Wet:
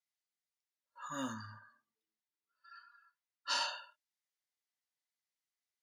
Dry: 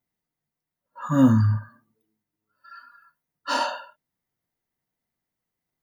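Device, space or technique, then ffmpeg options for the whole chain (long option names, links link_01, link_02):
piezo pickup straight into a mixer: -filter_complex "[0:a]lowpass=5300,aderivative,asettb=1/sr,asplit=3[link_01][link_02][link_03];[link_01]atrim=end=1.344[link_04];[link_02]atrim=start=1.34:end=3.5,asetpts=PTS-STARTPTS,afade=type=in:duration=0.004:curve=qsin,afade=type=out:start_time=2.156:duration=0.004:curve=qsin,lowpass=frequency=3900:poles=1[link_05];[link_03]atrim=start=3.496[link_06];[link_04][link_05]acrossfade=duration=0.004:curve1=hsin:curve2=qsin[link_07];[link_07][link_06]acrossfade=duration=0.004:curve1=qsin:curve2=hsin,volume=3dB"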